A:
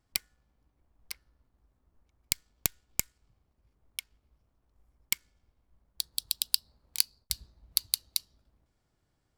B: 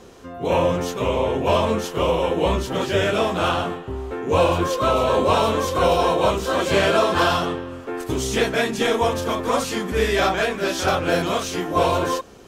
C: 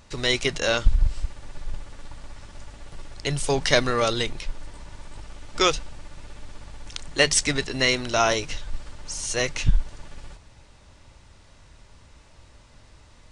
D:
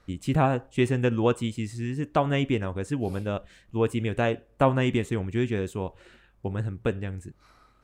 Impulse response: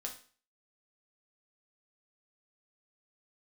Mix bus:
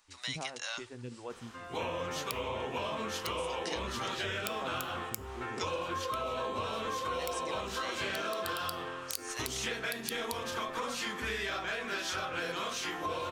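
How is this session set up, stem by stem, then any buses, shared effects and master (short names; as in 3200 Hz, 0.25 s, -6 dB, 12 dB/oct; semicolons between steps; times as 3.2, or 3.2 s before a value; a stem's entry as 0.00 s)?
-0.5 dB, 2.15 s, bus A, send -19 dB, dry
-1.0 dB, 1.30 s, bus A, send -11 dB, high shelf 6000 Hz -10 dB
-13.0 dB, 0.00 s, bus A, no send, high shelf 5800 Hz +6.5 dB
-17.0 dB, 0.00 s, no bus, no send, photocell phaser 2.7 Hz
bus A: 0.0 dB, HPF 800 Hz 24 dB/oct; compressor, threshold -29 dBFS, peak gain reduction 11.5 dB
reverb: on, RT60 0.40 s, pre-delay 4 ms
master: compressor 4:1, threshold -33 dBFS, peak gain reduction 8.5 dB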